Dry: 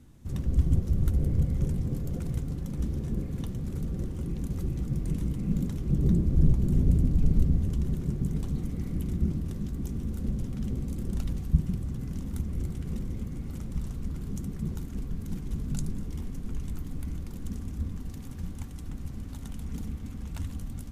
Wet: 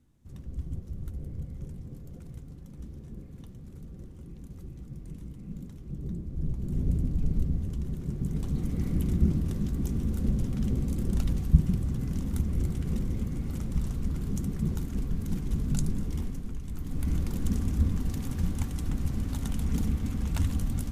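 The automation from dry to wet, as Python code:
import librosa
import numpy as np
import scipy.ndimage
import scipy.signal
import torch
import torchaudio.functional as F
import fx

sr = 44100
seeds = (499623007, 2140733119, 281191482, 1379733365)

y = fx.gain(x, sr, db=fx.line((6.33, -12.0), (6.86, -4.5), (7.95, -4.5), (8.83, 3.5), (16.21, 3.5), (16.62, -4.0), (17.14, 7.5)))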